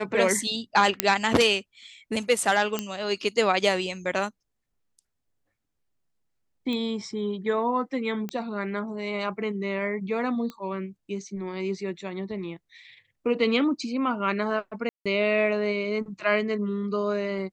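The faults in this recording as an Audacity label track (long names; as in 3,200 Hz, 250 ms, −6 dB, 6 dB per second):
1.000000	1.000000	click −1 dBFS
2.790000	2.790000	click −11 dBFS
6.730000	6.730000	click −20 dBFS
8.290000	8.290000	click −18 dBFS
10.500000	10.500000	click −23 dBFS
14.890000	15.060000	drop-out 166 ms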